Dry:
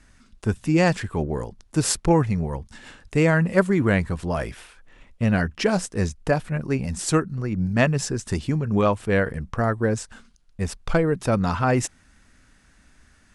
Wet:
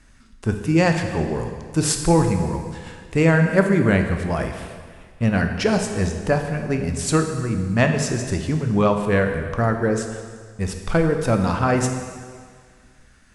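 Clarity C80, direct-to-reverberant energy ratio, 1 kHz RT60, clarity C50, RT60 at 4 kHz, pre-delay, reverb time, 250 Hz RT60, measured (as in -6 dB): 7.5 dB, 4.5 dB, 1.8 s, 6.5 dB, 1.7 s, 7 ms, 1.8 s, 1.8 s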